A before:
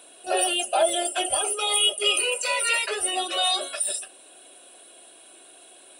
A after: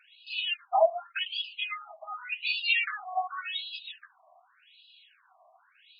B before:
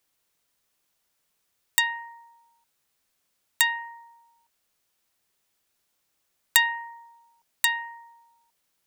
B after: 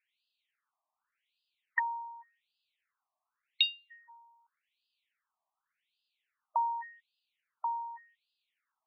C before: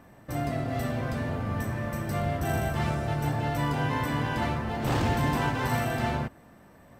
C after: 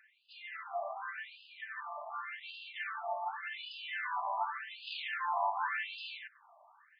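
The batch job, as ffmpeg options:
-af "aeval=exprs='0.891*(cos(1*acos(clip(val(0)/0.891,-1,1)))-cos(1*PI/2))+0.224*(cos(2*acos(clip(val(0)/0.891,-1,1)))-cos(2*PI/2))':c=same,afftfilt=real='re*between(b*sr/1024,840*pow(3600/840,0.5+0.5*sin(2*PI*0.87*pts/sr))/1.41,840*pow(3600/840,0.5+0.5*sin(2*PI*0.87*pts/sr))*1.41)':imag='im*between(b*sr/1024,840*pow(3600/840,0.5+0.5*sin(2*PI*0.87*pts/sr))/1.41,840*pow(3600/840,0.5+0.5*sin(2*PI*0.87*pts/sr))*1.41)':win_size=1024:overlap=0.75"

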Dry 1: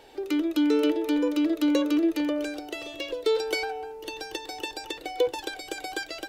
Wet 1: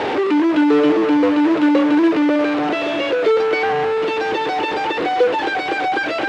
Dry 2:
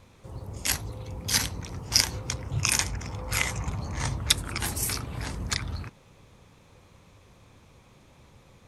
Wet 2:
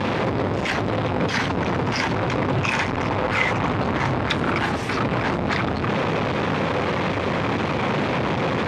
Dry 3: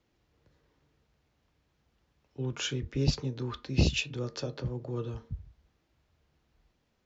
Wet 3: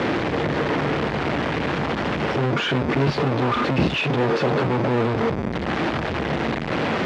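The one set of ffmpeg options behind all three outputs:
-filter_complex "[0:a]aeval=exprs='val(0)+0.5*0.133*sgn(val(0))':c=same,aemphasis=mode=reproduction:type=cd,acrossover=split=1000[a][b];[a]acrusher=bits=3:mode=log:mix=0:aa=0.000001[c];[c][b]amix=inputs=2:normalize=0,highpass=170,lowpass=2.6k,volume=4dB"

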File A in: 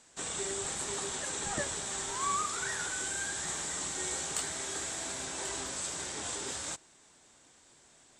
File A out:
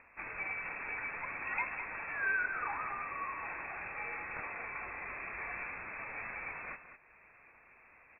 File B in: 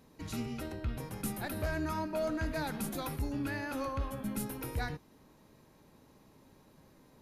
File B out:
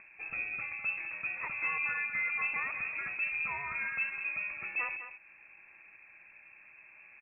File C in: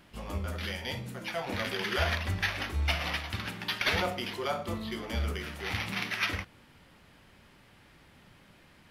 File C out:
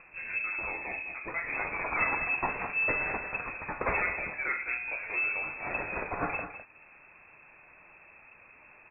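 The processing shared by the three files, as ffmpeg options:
-filter_complex "[0:a]acompressor=mode=upward:threshold=-49dB:ratio=2.5,asplit=2[a][b];[b]aecho=0:1:206:0.299[c];[a][c]amix=inputs=2:normalize=0,lowpass=f=2.3k:t=q:w=0.5098,lowpass=f=2.3k:t=q:w=0.6013,lowpass=f=2.3k:t=q:w=0.9,lowpass=f=2.3k:t=q:w=2.563,afreqshift=-2700,lowshelf=f=150:g=10.5"

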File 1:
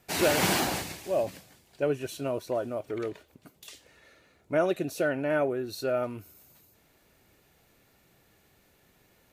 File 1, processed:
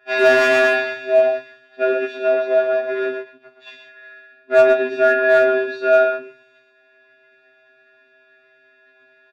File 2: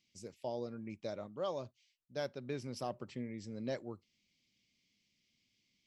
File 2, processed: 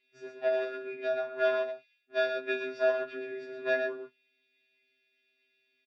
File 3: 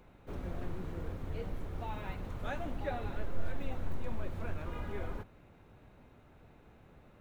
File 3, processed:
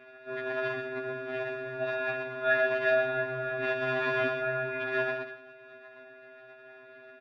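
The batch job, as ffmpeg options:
-filter_complex "[0:a]asplit=2[a][b];[b]acrusher=bits=6:dc=4:mix=0:aa=0.000001,volume=-3.5dB[c];[a][c]amix=inputs=2:normalize=0,equalizer=f=400:t=o:w=1.9:g=2.5,aecho=1:1:54|113|122:0.251|0.237|0.447,afftfilt=real='hypot(re,im)*cos(PI*b)':imag='0':win_size=512:overlap=0.75,aeval=exprs='val(0)*sin(2*PI*43*n/s)':c=same,acontrast=78,highpass=230,equalizer=f=370:t=q:w=4:g=-9,equalizer=f=1.1k:t=q:w=4:g=4,equalizer=f=1.8k:t=q:w=4:g=9,lowpass=f=3.3k:w=0.5412,lowpass=f=3.3k:w=1.3066,asoftclip=type=hard:threshold=-12.5dB,afftfilt=real='re*2.45*eq(mod(b,6),0)':imag='im*2.45*eq(mod(b,6),0)':win_size=2048:overlap=0.75,volume=6dB"

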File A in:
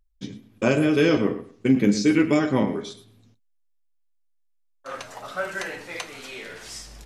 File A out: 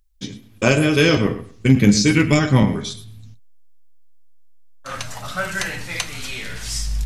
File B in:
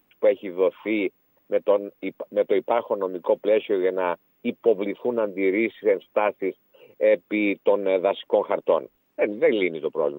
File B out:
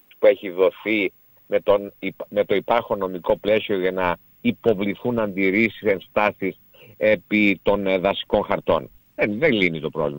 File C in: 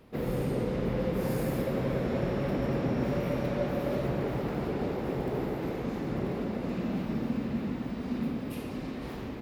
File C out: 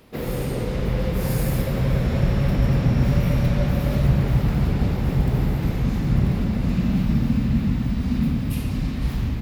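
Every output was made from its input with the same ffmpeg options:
-af "highshelf=f=2.5k:g=8.5,aeval=exprs='0.473*(cos(1*acos(clip(val(0)/0.473,-1,1)))-cos(1*PI/2))+0.0299*(cos(3*acos(clip(val(0)/0.473,-1,1)))-cos(3*PI/2))':c=same,asubboost=boost=11.5:cutoff=120,volume=5.5dB"

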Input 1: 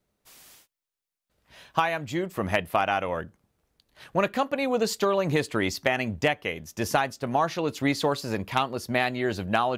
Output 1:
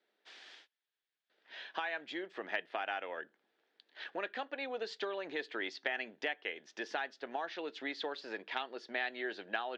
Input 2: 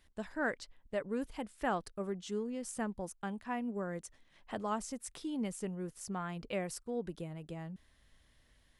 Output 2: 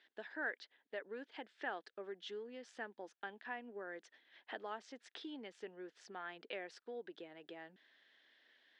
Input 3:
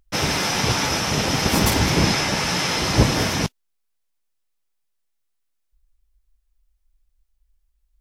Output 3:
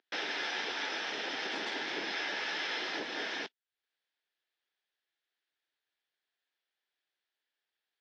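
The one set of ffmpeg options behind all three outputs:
-af "acompressor=threshold=-44dB:ratio=2,highpass=f=330:w=0.5412,highpass=f=330:w=1.3066,equalizer=f=560:t=q:w=4:g=-4,equalizer=f=1.1k:t=q:w=4:g=-7,equalizer=f=1.7k:t=q:w=4:g=8,equalizer=f=3.4k:t=q:w=4:g=5,lowpass=f=4.5k:w=0.5412,lowpass=f=4.5k:w=1.3066"

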